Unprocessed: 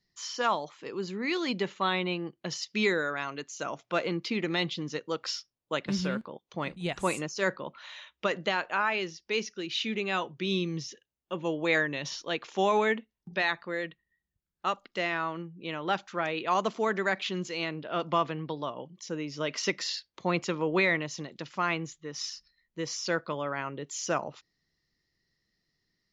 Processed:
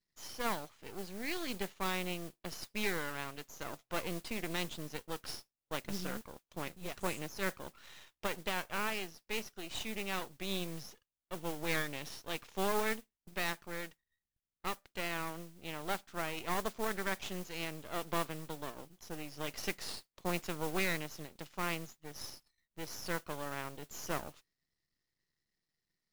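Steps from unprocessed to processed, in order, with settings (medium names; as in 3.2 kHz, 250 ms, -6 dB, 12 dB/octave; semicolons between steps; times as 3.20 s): half-wave rectifier; modulation noise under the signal 12 dB; trim -5.5 dB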